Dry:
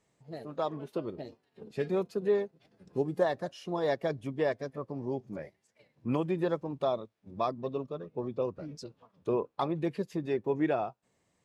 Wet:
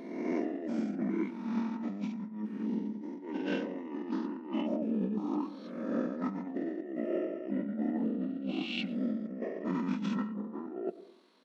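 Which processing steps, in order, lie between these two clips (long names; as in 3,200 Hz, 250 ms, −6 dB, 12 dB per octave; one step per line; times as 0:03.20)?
peak hold with a rise ahead of every peak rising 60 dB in 1.24 s
linear-phase brick-wall high-pass 350 Hz
compressor whose output falls as the input rises −38 dBFS, ratio −1
on a send at −15 dB: convolution reverb RT60 0.70 s, pre-delay 92 ms
on the sum: pitch shifter −11 semitones
level +2.5 dB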